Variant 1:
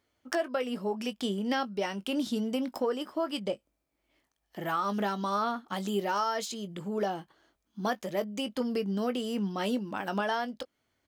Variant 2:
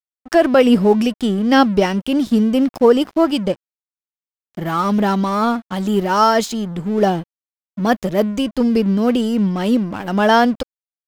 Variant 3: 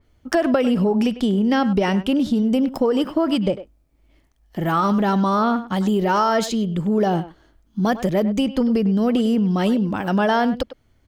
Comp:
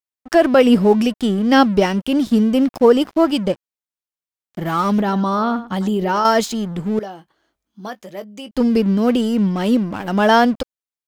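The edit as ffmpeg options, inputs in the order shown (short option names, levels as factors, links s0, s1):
-filter_complex "[1:a]asplit=3[s0][s1][s2];[s0]atrim=end=5.012[s3];[2:a]atrim=start=5.008:end=6.252[s4];[s1]atrim=start=6.248:end=6.992[s5];[0:a]atrim=start=6.988:end=8.512[s6];[s2]atrim=start=8.508[s7];[s3][s4]acrossfade=d=0.004:c1=hsin:c2=hsin[s8];[s8][s5]acrossfade=d=0.004:c1=hsin:c2=hsin[s9];[s9][s6]acrossfade=d=0.004:c1=hsin:c2=hsin[s10];[s10][s7]acrossfade=d=0.004:c1=hsin:c2=hsin"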